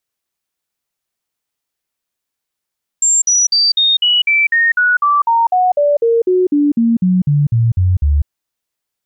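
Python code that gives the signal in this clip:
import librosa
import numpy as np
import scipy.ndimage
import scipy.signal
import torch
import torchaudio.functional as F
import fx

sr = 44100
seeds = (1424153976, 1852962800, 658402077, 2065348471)

y = fx.stepped_sweep(sr, from_hz=7390.0, direction='down', per_octave=3, tones=21, dwell_s=0.2, gap_s=0.05, level_db=-9.0)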